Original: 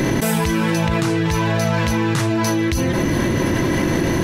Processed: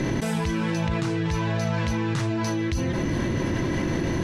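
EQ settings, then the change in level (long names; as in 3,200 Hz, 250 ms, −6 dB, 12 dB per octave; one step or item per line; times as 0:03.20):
high-frequency loss of the air 76 metres
low-shelf EQ 180 Hz +4.5 dB
high-shelf EQ 4,600 Hz +5.5 dB
−8.5 dB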